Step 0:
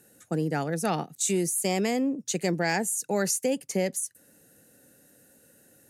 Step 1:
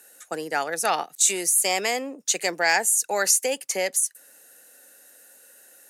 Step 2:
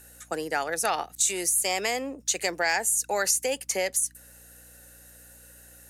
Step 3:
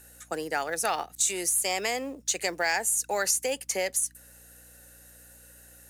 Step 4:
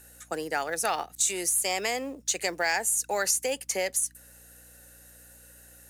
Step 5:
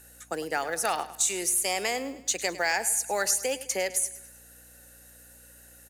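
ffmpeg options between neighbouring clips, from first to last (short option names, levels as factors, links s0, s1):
-af "highpass=750,volume=2.66"
-af "acompressor=threshold=0.0631:ratio=2,aeval=exprs='val(0)+0.00158*(sin(2*PI*60*n/s)+sin(2*PI*2*60*n/s)/2+sin(2*PI*3*60*n/s)/3+sin(2*PI*4*60*n/s)/4+sin(2*PI*5*60*n/s)/5)':c=same"
-af "acrusher=bits=7:mode=log:mix=0:aa=0.000001,volume=0.841"
-af anull
-af "aecho=1:1:104|208|312|416:0.168|0.0755|0.034|0.0153"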